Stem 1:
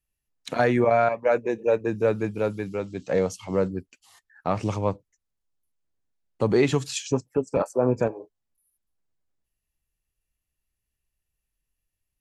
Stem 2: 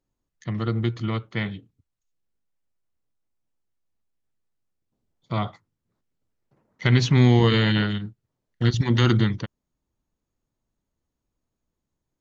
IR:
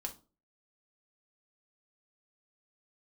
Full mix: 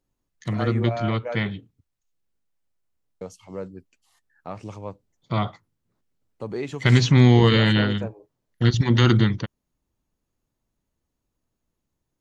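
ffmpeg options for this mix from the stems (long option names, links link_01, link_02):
-filter_complex "[0:a]volume=-10dB,asplit=3[link_01][link_02][link_03];[link_01]atrim=end=1.47,asetpts=PTS-STARTPTS,afade=type=out:start_time=1.466:duration=0.004:curve=hsin[link_04];[link_02]atrim=start=1.47:end=3.21,asetpts=PTS-STARTPTS,volume=0[link_05];[link_03]atrim=start=3.21,asetpts=PTS-STARTPTS,afade=type=in:duration=0.004:curve=hsin[link_06];[link_04][link_05][link_06]concat=n=3:v=0:a=1[link_07];[1:a]volume=2dB[link_08];[link_07][link_08]amix=inputs=2:normalize=0"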